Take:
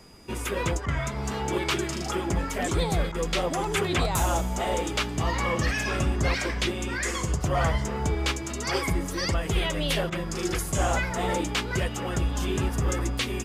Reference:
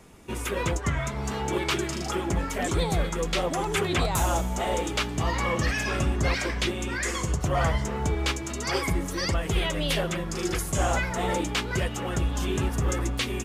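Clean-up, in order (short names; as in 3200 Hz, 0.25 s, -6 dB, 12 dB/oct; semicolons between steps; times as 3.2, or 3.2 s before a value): notch 4900 Hz, Q 30; interpolate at 0.86/3.12/10.1, 22 ms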